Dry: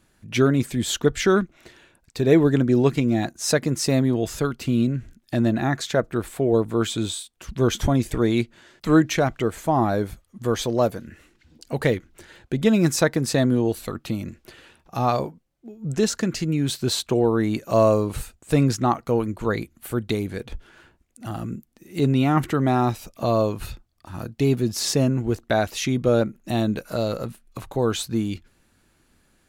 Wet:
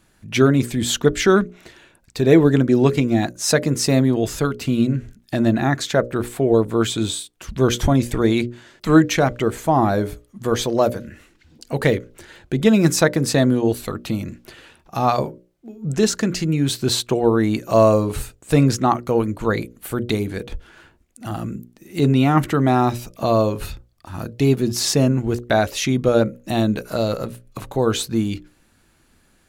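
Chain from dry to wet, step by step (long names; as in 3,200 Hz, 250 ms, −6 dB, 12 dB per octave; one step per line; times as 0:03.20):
mains-hum notches 60/120/180/240/300/360/420/480/540/600 Hz
level +4 dB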